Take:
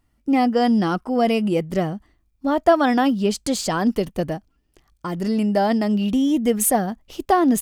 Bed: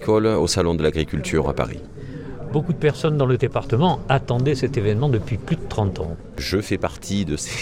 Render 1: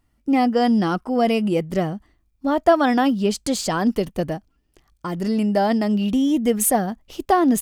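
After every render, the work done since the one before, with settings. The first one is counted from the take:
no processing that can be heard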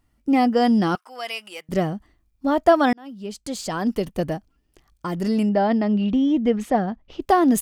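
0:00.95–0:01.69: high-pass filter 1,400 Hz
0:02.93–0:04.29: fade in
0:05.49–0:07.22: high-frequency loss of the air 220 metres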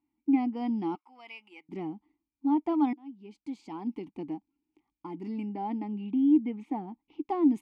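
formant filter u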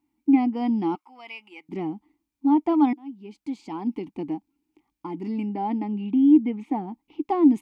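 level +6.5 dB

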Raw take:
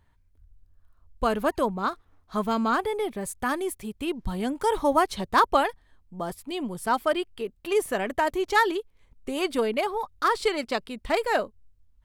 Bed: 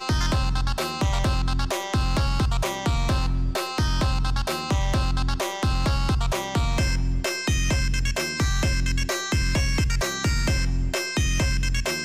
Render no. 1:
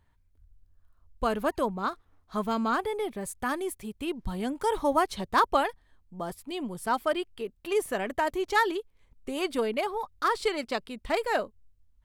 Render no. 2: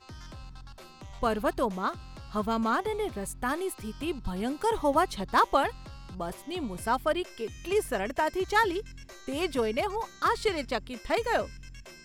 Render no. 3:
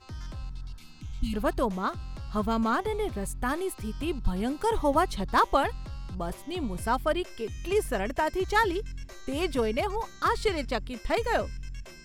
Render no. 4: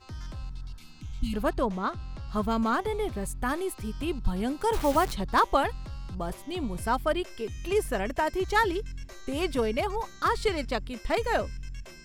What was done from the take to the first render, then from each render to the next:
level −3 dB
mix in bed −22.5 dB
0:00.57–0:01.32: healed spectral selection 330–2,000 Hz before; low-shelf EQ 120 Hz +10 dB
0:01.49–0:02.29: high-frequency loss of the air 52 metres; 0:04.73–0:05.13: bit-depth reduction 6 bits, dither none

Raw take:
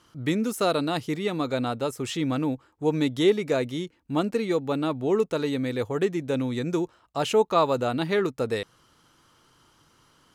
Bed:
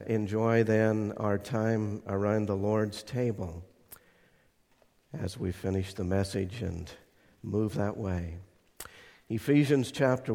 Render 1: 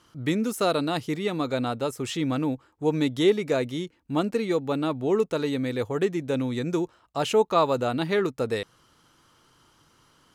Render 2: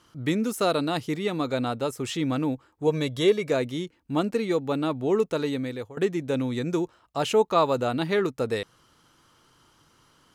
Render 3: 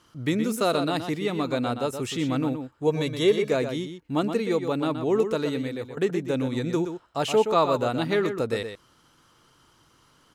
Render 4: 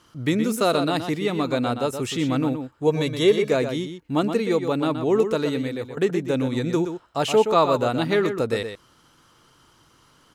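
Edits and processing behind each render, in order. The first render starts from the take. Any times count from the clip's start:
no processing that can be heard
0:02.87–0:03.50: comb filter 1.8 ms, depth 53%; 0:05.32–0:05.97: fade out equal-power, to −19 dB
slap from a distant wall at 21 metres, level −8 dB
level +3 dB

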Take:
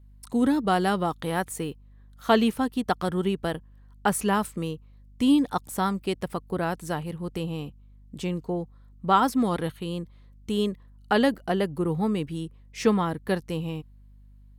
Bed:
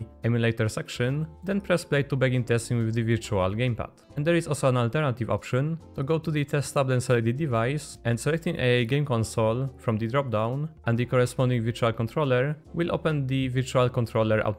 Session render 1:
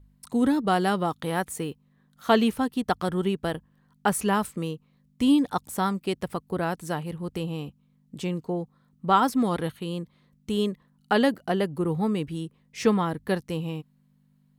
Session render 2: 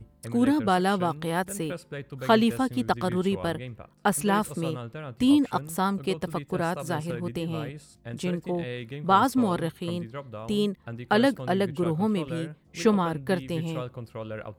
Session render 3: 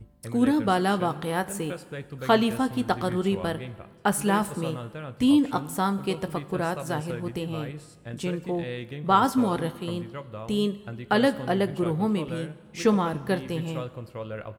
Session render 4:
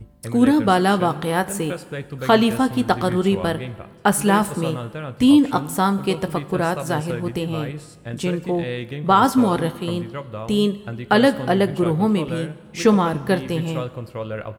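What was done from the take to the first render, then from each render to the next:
hum removal 50 Hz, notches 2
mix in bed −13 dB
double-tracking delay 20 ms −14 dB; dense smooth reverb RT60 1.8 s, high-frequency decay 0.85×, DRR 15 dB
level +6.5 dB; brickwall limiter −3 dBFS, peak gain reduction 3 dB

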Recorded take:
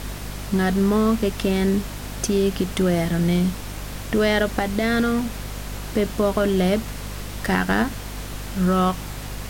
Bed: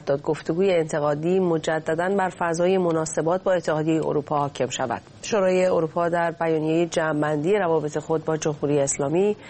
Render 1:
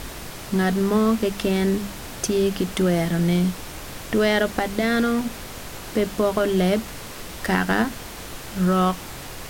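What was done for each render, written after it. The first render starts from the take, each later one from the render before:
mains-hum notches 50/100/150/200/250 Hz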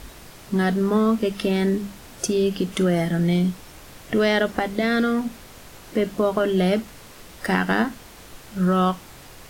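noise reduction from a noise print 8 dB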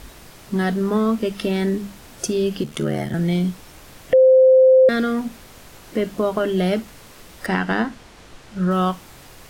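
0:02.63–0:03.14: ring modulation 37 Hz
0:04.13–0:04.89: beep over 520 Hz −8 dBFS
0:07.46–0:08.71: high-frequency loss of the air 52 metres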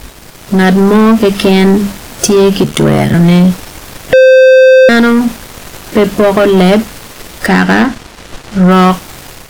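leveller curve on the samples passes 3
automatic gain control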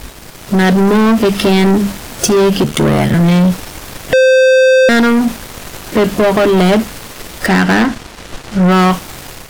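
soft clipping −6 dBFS, distortion −16 dB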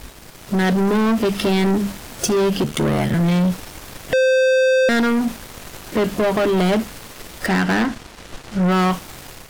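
level −7.5 dB

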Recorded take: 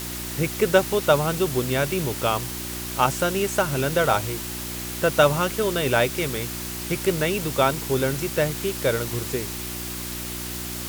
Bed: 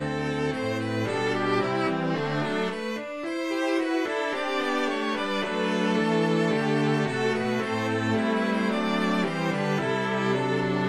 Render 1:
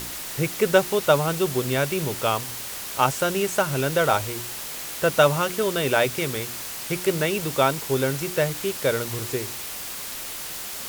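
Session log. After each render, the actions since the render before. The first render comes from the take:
hum removal 60 Hz, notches 6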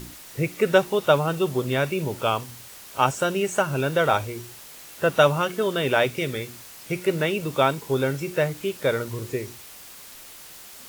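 noise reduction from a noise print 10 dB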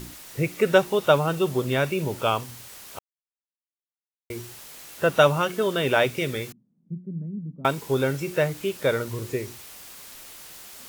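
0:02.99–0:04.30: silence
0:06.52–0:07.65: flat-topped band-pass 190 Hz, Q 2.5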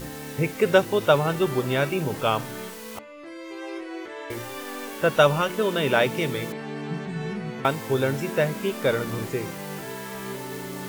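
mix in bed −9.5 dB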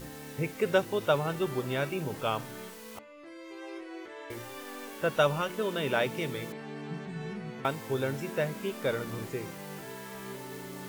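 level −7.5 dB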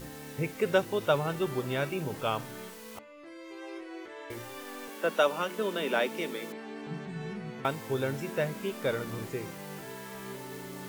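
0:04.88–0:06.87: Butterworth high-pass 180 Hz 72 dB per octave

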